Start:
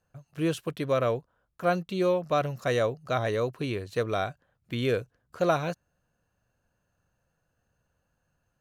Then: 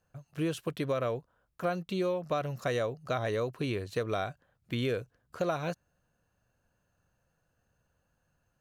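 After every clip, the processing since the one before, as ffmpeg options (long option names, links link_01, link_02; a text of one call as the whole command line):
ffmpeg -i in.wav -af "acompressor=threshold=-28dB:ratio=4" out.wav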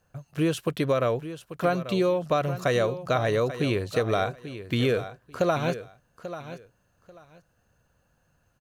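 ffmpeg -i in.wav -af "aecho=1:1:839|1678:0.237|0.0474,volume=7dB" out.wav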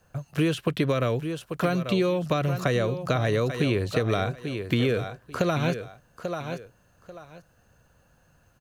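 ffmpeg -i in.wav -filter_complex "[0:a]acrossover=split=340|1600|3600[link_01][link_02][link_03][link_04];[link_01]acompressor=threshold=-30dB:ratio=4[link_05];[link_02]acompressor=threshold=-36dB:ratio=4[link_06];[link_03]acompressor=threshold=-40dB:ratio=4[link_07];[link_04]acompressor=threshold=-51dB:ratio=4[link_08];[link_05][link_06][link_07][link_08]amix=inputs=4:normalize=0,volume=6.5dB" out.wav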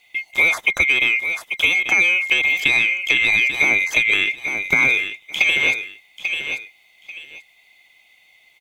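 ffmpeg -i in.wav -af "afftfilt=real='real(if(lt(b,920),b+92*(1-2*mod(floor(b/92),2)),b),0)':imag='imag(if(lt(b,920),b+92*(1-2*mod(floor(b/92),2)),b),0)':win_size=2048:overlap=0.75,volume=7dB" out.wav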